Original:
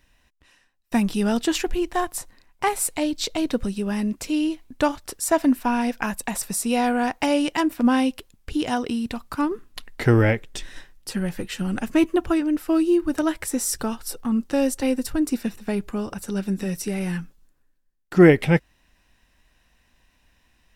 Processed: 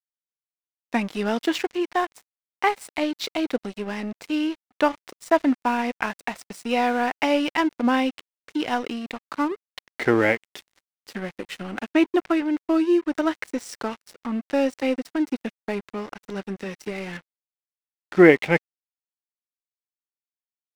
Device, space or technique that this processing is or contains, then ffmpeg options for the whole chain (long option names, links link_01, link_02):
pocket radio on a weak battery: -af "highpass=280,lowpass=4400,aeval=exprs='sgn(val(0))*max(abs(val(0))-0.0119,0)':channel_layout=same,equalizer=frequency=2100:width_type=o:width=0.26:gain=4,volume=2dB"